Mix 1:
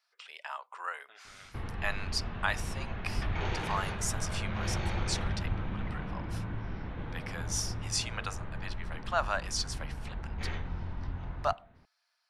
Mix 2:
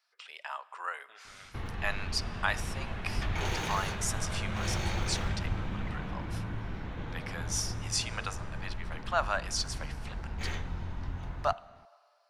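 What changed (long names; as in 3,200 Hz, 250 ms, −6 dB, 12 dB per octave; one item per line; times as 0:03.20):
background: remove high-frequency loss of the air 190 metres
reverb: on, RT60 2.1 s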